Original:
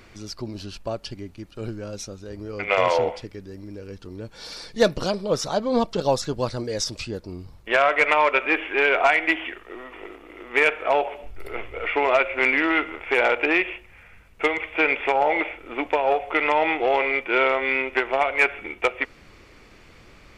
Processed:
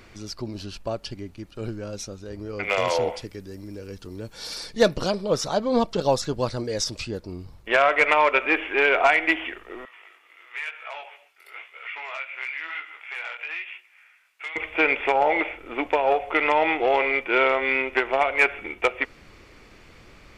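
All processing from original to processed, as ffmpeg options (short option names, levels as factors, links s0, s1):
-filter_complex "[0:a]asettb=1/sr,asplit=3[s0][s1][s2];[s0]atrim=end=2.644[s3];[s1]atrim=start=2.64:end=4.71,asetpts=PTS-STARTPTS,afade=t=in:d=0.004:c=qsin,afade=t=out:st=2.066:d=0.004:c=qsin,highshelf=f=6600:g=11,acrossover=split=410|3000[s4][s5][s6];[s5]acompressor=threshold=0.0794:ratio=3:attack=3.2:release=140:knee=2.83:detection=peak[s7];[s4][s7][s6]amix=inputs=3:normalize=0,asoftclip=type=hard:threshold=0.224[s8];[s2]atrim=start=4.706[s9];[s3][s8]acrossfade=d=0.004:c1=hsin:c2=qsin[s10];[s10][s9]acrossfade=d=0.004:c1=qsin:c2=hsin,asettb=1/sr,asplit=3[s11][s12][s13];[s11]atrim=end=9.854[s14];[s12]atrim=start=9.85:end=14.56,asetpts=PTS-STARTPTS,afade=t=in:d=0.004:c=qsin,afade=t=out:st=4.706:d=0.004:c=qsin,highpass=1500,acompressor=threshold=0.0316:ratio=2:attack=3.2:release=140:knee=1:detection=peak,flanger=delay=16:depth=7.6:speed=1[s15];[s13]atrim=start=14.556[s16];[s14][s15]acrossfade=d=0.004:c1=hsin:c2=qsin[s17];[s17][s16]acrossfade=d=0.004:c1=qsin:c2=hsin"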